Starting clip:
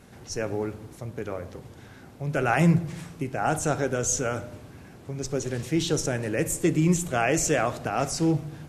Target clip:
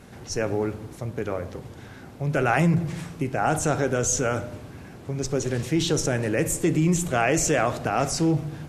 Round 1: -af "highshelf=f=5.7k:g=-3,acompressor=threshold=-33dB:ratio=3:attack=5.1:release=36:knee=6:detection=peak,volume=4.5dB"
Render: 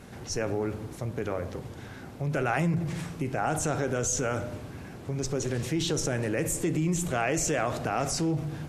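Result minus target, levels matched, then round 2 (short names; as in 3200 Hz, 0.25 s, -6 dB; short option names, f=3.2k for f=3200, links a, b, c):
compressor: peak gain reduction +6.5 dB
-af "highshelf=f=5.7k:g=-3,acompressor=threshold=-23.5dB:ratio=3:attack=5.1:release=36:knee=6:detection=peak,volume=4.5dB"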